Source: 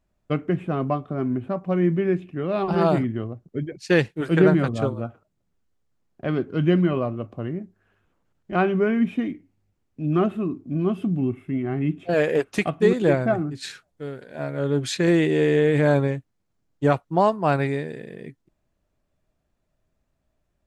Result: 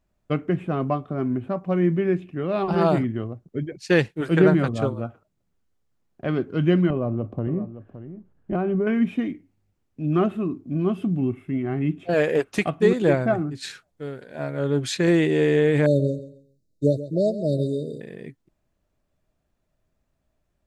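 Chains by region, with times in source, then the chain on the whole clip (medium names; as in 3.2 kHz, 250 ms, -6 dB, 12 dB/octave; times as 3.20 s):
6.90–8.87 s: tilt shelf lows +8 dB, about 1.1 kHz + compression, threshold -20 dBFS + delay 567 ms -13 dB
15.86–18.01 s: brick-wall FIR band-stop 660–3600 Hz + feedback delay 135 ms, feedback 25%, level -14 dB
whole clip: none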